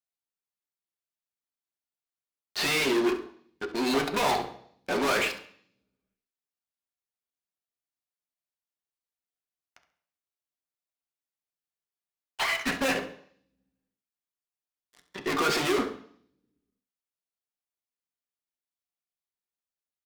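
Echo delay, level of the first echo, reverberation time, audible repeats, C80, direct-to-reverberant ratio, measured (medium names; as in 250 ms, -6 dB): 68 ms, -13.5 dB, 0.60 s, 1, 13.5 dB, 3.0 dB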